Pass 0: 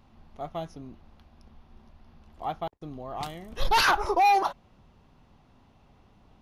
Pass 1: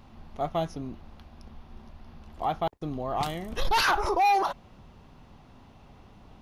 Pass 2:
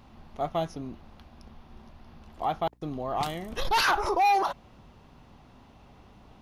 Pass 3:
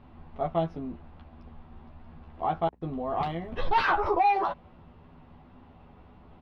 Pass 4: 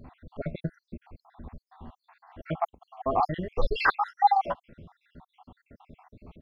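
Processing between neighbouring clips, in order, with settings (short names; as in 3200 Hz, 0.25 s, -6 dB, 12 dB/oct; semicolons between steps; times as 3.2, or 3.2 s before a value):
limiter -25 dBFS, peak gain reduction 10 dB; gain +6.5 dB
low shelf 130 Hz -4.5 dB; hum 60 Hz, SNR 32 dB
air absorption 390 m; doubler 12 ms -3 dB
random spectral dropouts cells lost 72%; gain +6 dB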